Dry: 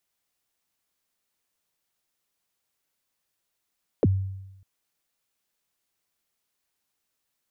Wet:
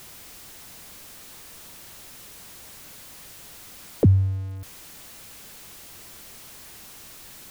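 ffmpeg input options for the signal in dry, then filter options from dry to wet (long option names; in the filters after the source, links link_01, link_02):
-f lavfi -i "aevalsrc='0.188*pow(10,-3*t/0.96)*sin(2*PI*(580*0.034/log(96/580)*(exp(log(96/580)*min(t,0.034)/0.034)-1)+96*max(t-0.034,0)))':duration=0.6:sample_rate=44100"
-af "aeval=exprs='val(0)+0.5*0.0119*sgn(val(0))':channel_layout=same,lowshelf=frequency=280:gain=8"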